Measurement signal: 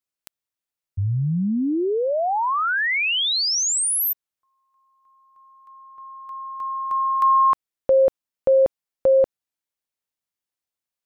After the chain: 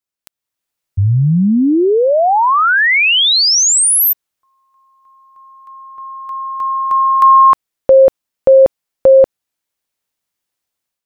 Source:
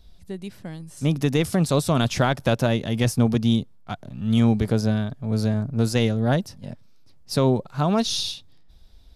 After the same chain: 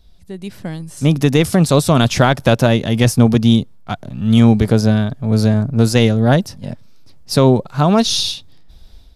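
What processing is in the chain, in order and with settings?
automatic gain control gain up to 9.5 dB
level +1 dB

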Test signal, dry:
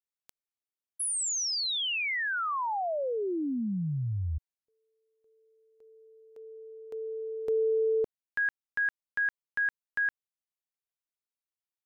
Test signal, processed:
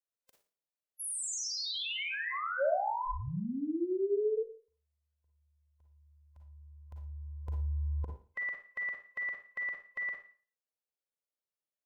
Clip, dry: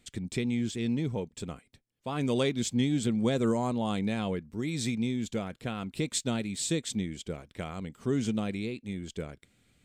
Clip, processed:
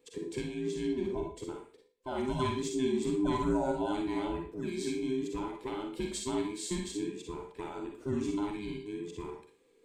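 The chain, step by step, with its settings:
frequency inversion band by band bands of 500 Hz
parametric band 530 Hz +12 dB 0.88 octaves
four-comb reverb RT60 0.41 s, DRR 1.5 dB
level −8.5 dB

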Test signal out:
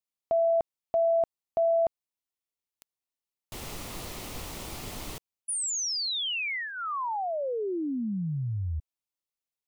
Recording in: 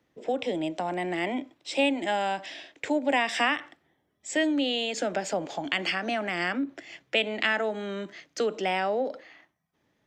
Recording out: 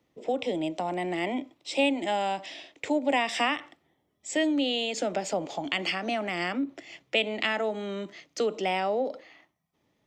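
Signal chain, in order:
parametric band 1,600 Hz −9 dB 0.32 octaves

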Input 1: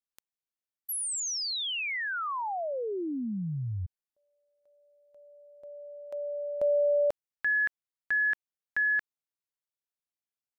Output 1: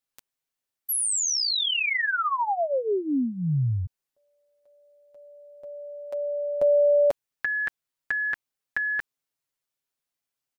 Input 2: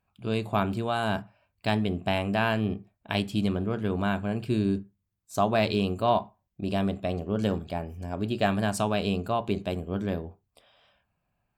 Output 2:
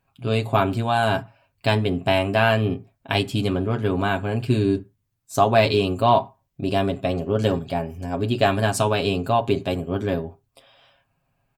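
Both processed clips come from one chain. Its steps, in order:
comb filter 7.4 ms, depth 67%
level +5.5 dB

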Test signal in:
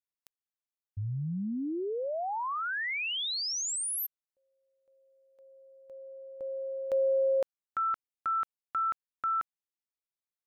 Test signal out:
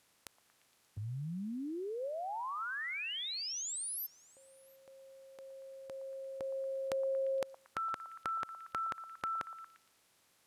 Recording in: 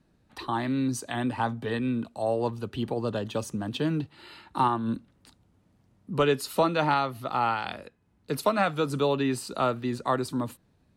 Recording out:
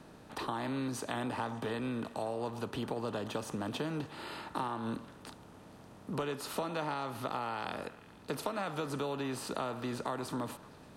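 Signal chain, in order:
compressor on every frequency bin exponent 0.6
downward compressor, threshold −25 dBFS
echo through a band-pass that steps 116 ms, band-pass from 860 Hz, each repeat 0.7 octaves, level −11.5 dB
level −7.5 dB

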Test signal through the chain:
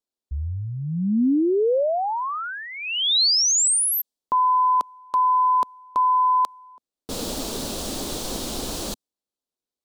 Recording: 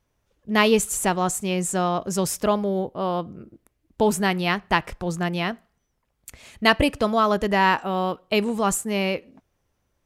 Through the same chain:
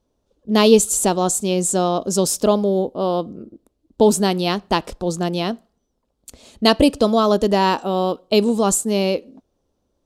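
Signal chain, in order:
octave-band graphic EQ 125/250/500/2,000/4,000/8,000 Hz −6/+7/+5/−11/+8/+5 dB
one half of a high-frequency compander decoder only
level +1.5 dB

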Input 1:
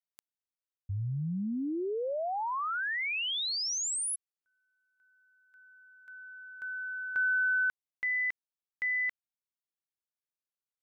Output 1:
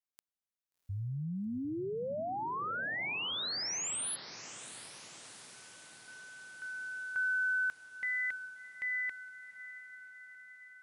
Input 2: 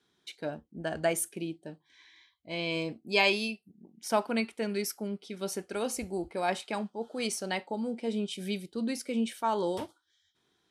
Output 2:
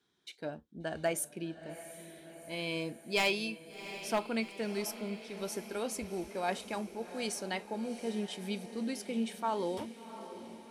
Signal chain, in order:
wavefolder on the positive side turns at −18 dBFS
feedback delay with all-pass diffusion 721 ms, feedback 62%, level −13 dB
level −4 dB

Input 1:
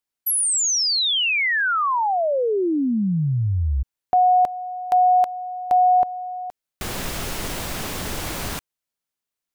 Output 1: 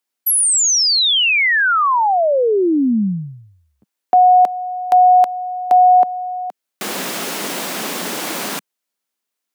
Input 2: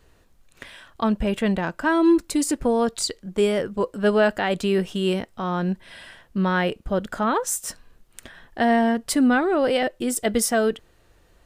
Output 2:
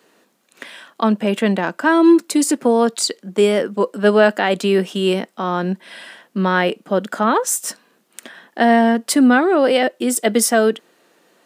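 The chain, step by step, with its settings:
Butterworth high-pass 190 Hz 36 dB per octave
level +6 dB

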